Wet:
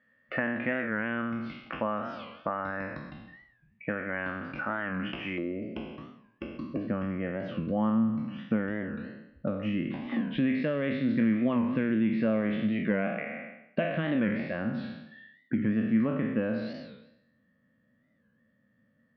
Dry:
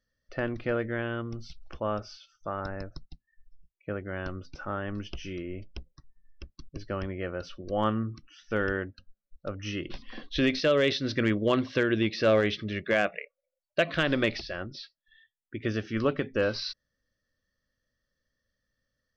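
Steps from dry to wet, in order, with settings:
peak hold with a decay on every bin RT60 0.78 s
parametric band 1,900 Hz +9.5 dB 1.8 octaves, from 0:05.38 490 Hz, from 0:06.87 150 Hz
downward compressor 4 to 1, threshold −37 dBFS, peak gain reduction 18 dB
loudspeaker in its box 160–2,400 Hz, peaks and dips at 230 Hz +9 dB, 390 Hz −8 dB, 1,400 Hz −5 dB
wow of a warped record 45 rpm, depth 160 cents
level +8.5 dB

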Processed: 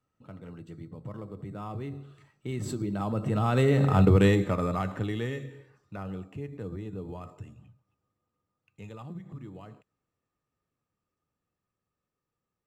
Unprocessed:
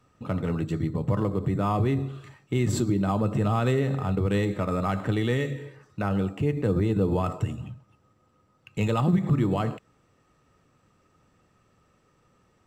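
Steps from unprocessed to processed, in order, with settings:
source passing by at 0:04.04, 9 m/s, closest 2.3 metres
level +6.5 dB

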